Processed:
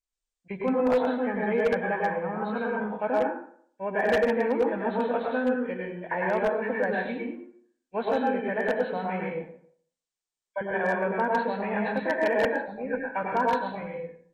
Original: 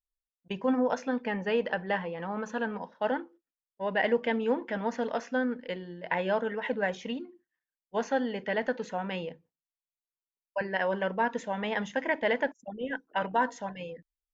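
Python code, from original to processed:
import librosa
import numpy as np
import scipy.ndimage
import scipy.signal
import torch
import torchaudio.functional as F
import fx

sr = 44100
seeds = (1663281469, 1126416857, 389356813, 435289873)

y = fx.freq_compress(x, sr, knee_hz=1500.0, ratio=1.5)
y = fx.rev_plate(y, sr, seeds[0], rt60_s=0.58, hf_ratio=0.7, predelay_ms=90, drr_db=-1.5)
y = 10.0 ** (-16.0 / 20.0) * (np.abs((y / 10.0 ** (-16.0 / 20.0) + 3.0) % 4.0 - 2.0) - 1.0)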